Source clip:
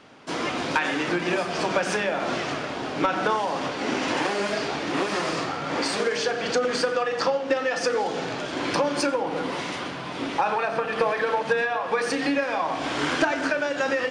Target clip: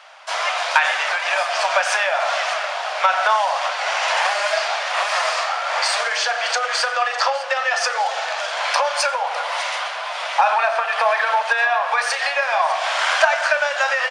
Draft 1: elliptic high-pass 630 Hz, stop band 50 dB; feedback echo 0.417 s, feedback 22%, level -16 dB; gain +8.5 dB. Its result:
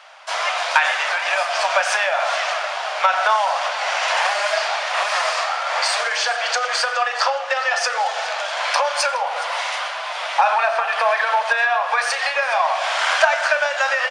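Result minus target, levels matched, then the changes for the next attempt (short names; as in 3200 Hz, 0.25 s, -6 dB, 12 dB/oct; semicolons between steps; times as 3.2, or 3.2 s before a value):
echo 0.186 s early
change: feedback echo 0.603 s, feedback 22%, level -16 dB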